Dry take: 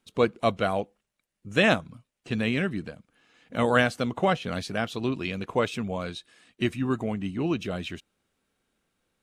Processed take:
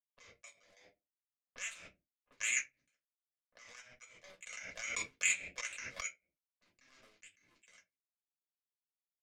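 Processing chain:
sub-octave generator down 2 octaves, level −3 dB
auto-filter low-pass sine 2.5 Hz 390–4,200 Hz
leveller curve on the samples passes 3
output level in coarse steps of 20 dB
envelope filter 730–2,200 Hz, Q 10, up, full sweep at −23.5 dBFS
power curve on the samples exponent 3
first-order pre-emphasis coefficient 0.8
convolution reverb, pre-delay 3 ms, DRR −3.5 dB
background raised ahead of every attack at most 29 dB per second
level +7.5 dB

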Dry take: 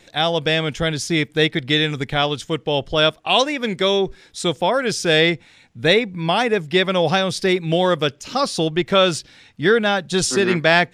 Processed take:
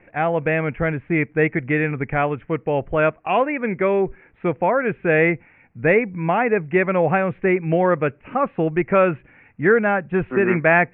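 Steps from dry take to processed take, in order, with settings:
Butterworth low-pass 2,500 Hz 72 dB per octave

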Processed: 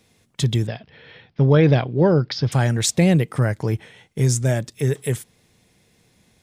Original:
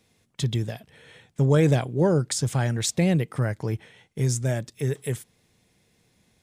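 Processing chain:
0:00.67–0:02.52: elliptic low-pass filter 5,100 Hz, stop band 40 dB
level +5.5 dB

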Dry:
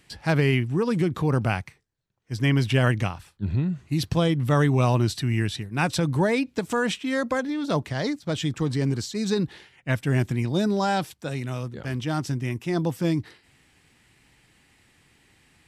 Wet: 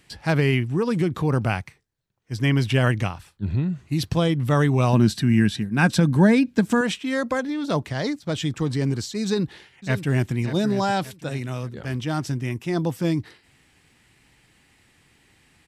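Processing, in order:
0:04.93–0:06.81: hollow resonant body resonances 210/1,600 Hz, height 12 dB
0:09.24–0:10.33: delay throw 580 ms, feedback 40%, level −11.5 dB
level +1 dB

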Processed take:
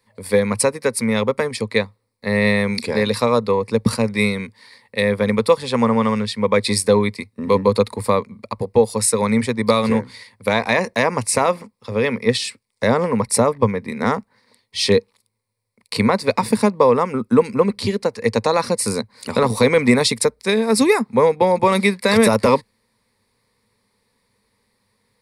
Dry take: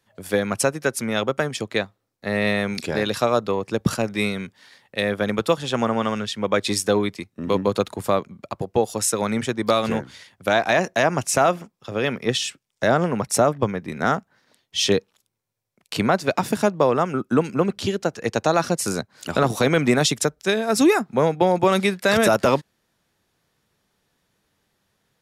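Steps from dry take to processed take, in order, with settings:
EQ curve with evenly spaced ripples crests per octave 0.93, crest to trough 12 dB
level +1.5 dB

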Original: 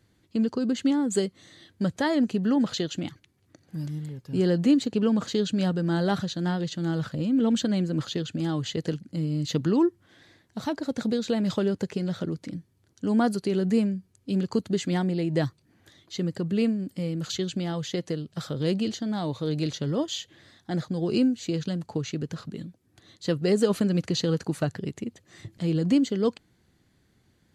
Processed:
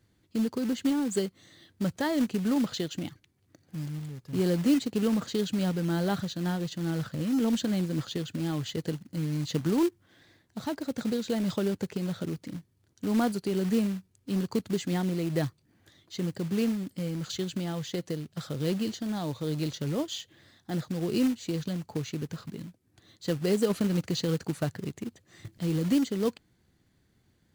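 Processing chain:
low-shelf EQ 170 Hz +2.5 dB
floating-point word with a short mantissa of 2 bits
level −4 dB

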